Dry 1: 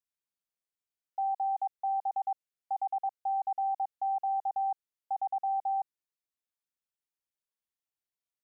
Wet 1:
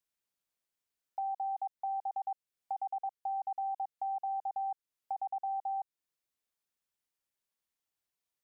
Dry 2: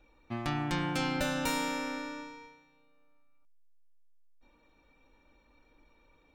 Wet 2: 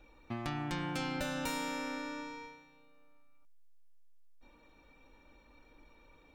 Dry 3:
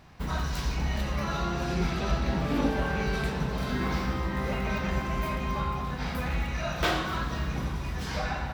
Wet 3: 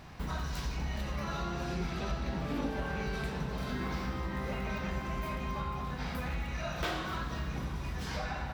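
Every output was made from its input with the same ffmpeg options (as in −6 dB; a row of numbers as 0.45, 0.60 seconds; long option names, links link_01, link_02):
-af "acompressor=threshold=-44dB:ratio=2,volume=3.5dB"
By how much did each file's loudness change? −4.5, −5.0, −6.5 LU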